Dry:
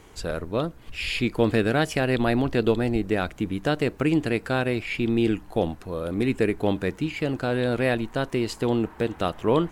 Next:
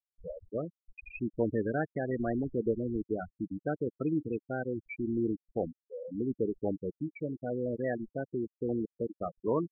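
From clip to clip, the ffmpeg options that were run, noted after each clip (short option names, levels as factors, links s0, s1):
-af "afftfilt=real='re*gte(hypot(re,im),0.2)':imag='im*gte(hypot(re,im),0.2)':win_size=1024:overlap=0.75,lowshelf=f=96:g=-7.5,volume=0.422"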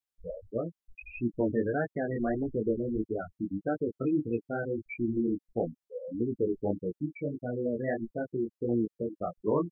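-af "flanger=delay=17:depth=5.3:speed=1.6,volume=1.78"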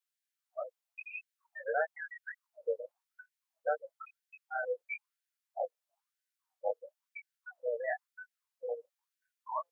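-af "afftfilt=real='re*gte(b*sr/1024,450*pow(1500/450,0.5+0.5*sin(2*PI*1*pts/sr)))':imag='im*gte(b*sr/1024,450*pow(1500/450,0.5+0.5*sin(2*PI*1*pts/sr)))':win_size=1024:overlap=0.75,volume=1.19"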